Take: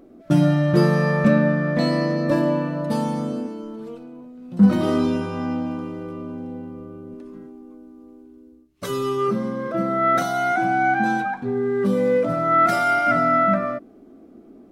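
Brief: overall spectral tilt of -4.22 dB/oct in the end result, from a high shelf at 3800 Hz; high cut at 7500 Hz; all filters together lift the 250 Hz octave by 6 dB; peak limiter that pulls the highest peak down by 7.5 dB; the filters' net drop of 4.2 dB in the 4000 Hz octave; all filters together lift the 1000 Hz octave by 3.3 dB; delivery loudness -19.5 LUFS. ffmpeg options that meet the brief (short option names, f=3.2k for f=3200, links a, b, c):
-af "lowpass=7.5k,equalizer=f=250:t=o:g=7.5,equalizer=f=1k:t=o:g=5,highshelf=f=3.8k:g=5.5,equalizer=f=4k:t=o:g=-9,volume=-1.5dB,alimiter=limit=-9dB:level=0:latency=1"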